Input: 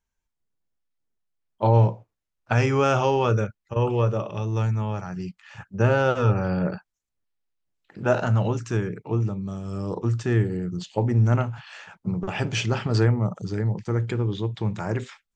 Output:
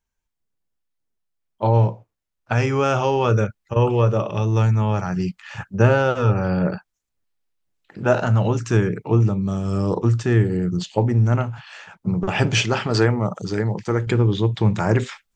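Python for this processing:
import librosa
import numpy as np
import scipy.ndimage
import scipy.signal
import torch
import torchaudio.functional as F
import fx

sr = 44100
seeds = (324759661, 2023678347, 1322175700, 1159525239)

y = fx.low_shelf(x, sr, hz=200.0, db=-11.0, at=(12.62, 14.07))
y = fx.rider(y, sr, range_db=4, speed_s=0.5)
y = y * 10.0 ** (5.0 / 20.0)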